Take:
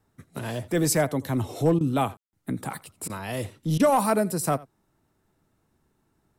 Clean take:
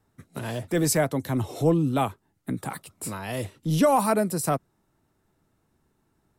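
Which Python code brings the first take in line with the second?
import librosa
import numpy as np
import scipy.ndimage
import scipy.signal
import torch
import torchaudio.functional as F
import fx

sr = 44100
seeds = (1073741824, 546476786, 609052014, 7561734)

y = fx.fix_declip(x, sr, threshold_db=-13.0)
y = fx.fix_ambience(y, sr, seeds[0], print_start_s=4.7, print_end_s=5.2, start_s=2.17, end_s=2.33)
y = fx.fix_interpolate(y, sr, at_s=(1.79, 3.08, 3.78), length_ms=16.0)
y = fx.fix_echo_inverse(y, sr, delay_ms=84, level_db=-21.5)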